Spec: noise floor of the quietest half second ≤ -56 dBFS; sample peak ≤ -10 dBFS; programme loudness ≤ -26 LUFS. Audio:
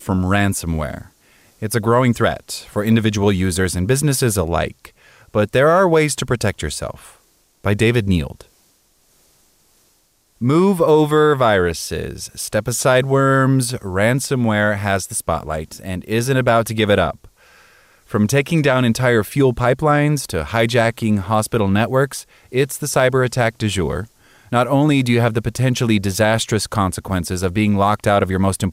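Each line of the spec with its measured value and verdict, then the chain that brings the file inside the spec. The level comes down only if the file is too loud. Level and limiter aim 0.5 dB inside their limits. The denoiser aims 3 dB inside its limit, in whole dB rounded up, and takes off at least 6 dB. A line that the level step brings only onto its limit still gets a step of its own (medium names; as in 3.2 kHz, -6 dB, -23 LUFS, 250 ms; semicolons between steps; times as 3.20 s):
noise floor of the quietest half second -59 dBFS: pass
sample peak -5.0 dBFS: fail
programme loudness -17.5 LUFS: fail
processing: trim -9 dB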